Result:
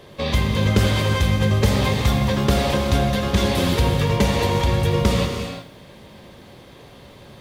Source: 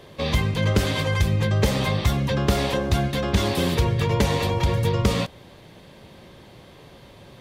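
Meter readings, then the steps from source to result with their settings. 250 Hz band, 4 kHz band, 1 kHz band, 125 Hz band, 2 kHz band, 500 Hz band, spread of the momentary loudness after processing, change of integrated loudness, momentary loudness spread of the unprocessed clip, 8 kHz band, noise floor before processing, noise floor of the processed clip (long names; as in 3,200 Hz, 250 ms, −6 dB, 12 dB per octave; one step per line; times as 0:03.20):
+3.5 dB, +3.0 dB, +3.5 dB, +2.5 dB, +2.5 dB, +2.5 dB, 4 LU, +3.0 dB, 2 LU, +3.0 dB, −48 dBFS, −45 dBFS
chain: reverb whose tail is shaped and stops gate 390 ms flat, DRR 3 dB
feedback echo at a low word length 81 ms, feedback 35%, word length 8 bits, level −13.5 dB
level +1 dB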